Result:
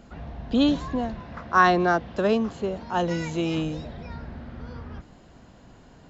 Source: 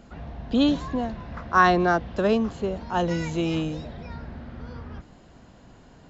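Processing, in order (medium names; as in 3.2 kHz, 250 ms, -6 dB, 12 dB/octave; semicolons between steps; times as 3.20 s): 1.20–3.58 s: high-pass 110 Hz 6 dB/octave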